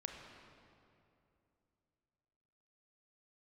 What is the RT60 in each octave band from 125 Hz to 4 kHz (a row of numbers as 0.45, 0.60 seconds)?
3.3, 3.2, 2.9, 2.5, 2.1, 1.8 seconds